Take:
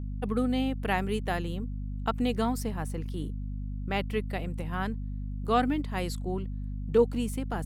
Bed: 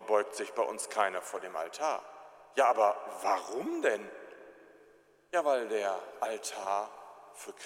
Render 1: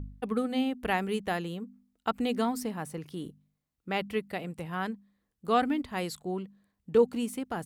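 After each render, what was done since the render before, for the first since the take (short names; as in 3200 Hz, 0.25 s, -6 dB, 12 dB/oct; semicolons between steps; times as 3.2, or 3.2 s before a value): de-hum 50 Hz, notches 5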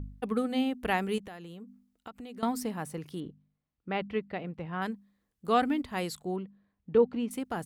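1.18–2.43 compressor 5:1, threshold -42 dBFS; 3.2–4.82 air absorption 250 m; 6.36–7.31 air absorption 250 m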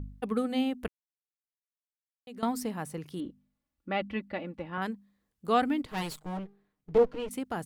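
0.88–2.27 mute; 3.19–4.78 comb 3.5 ms; 5.85–7.29 minimum comb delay 6.5 ms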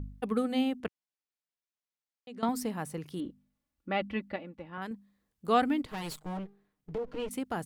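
0.8–2.49 BPF 110–6800 Hz; 4.36–4.91 gain -6 dB; 5.92–7.08 compressor, threshold -32 dBFS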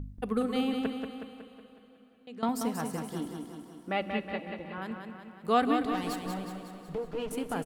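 feedback echo 0.184 s, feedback 56%, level -6 dB; plate-style reverb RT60 4 s, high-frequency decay 0.95×, DRR 13 dB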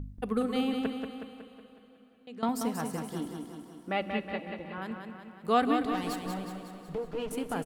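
nothing audible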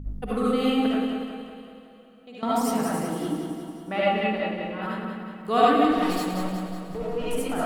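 digital reverb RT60 0.59 s, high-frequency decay 0.5×, pre-delay 35 ms, DRR -7 dB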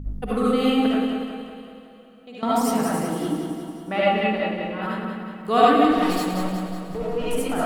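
gain +3 dB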